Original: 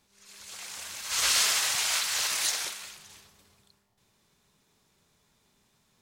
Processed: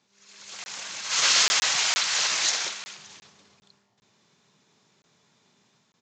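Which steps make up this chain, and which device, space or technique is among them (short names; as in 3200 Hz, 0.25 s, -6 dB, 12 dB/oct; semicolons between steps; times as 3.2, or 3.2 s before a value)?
call with lost packets (HPF 120 Hz 24 dB/oct; downsampling 16000 Hz; AGC gain up to 5 dB; packet loss)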